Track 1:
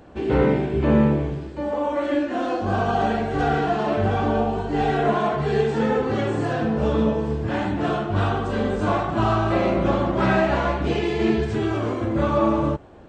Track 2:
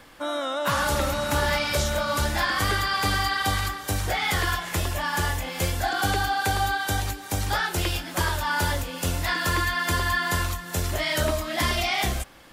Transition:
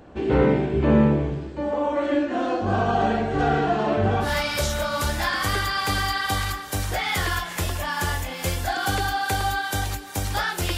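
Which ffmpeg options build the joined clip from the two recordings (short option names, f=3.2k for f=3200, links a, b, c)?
-filter_complex "[0:a]apad=whole_dur=10.77,atrim=end=10.77,atrim=end=4.3,asetpts=PTS-STARTPTS[a];[1:a]atrim=start=1.36:end=7.93,asetpts=PTS-STARTPTS[b];[a][b]acrossfade=d=0.1:c1=tri:c2=tri"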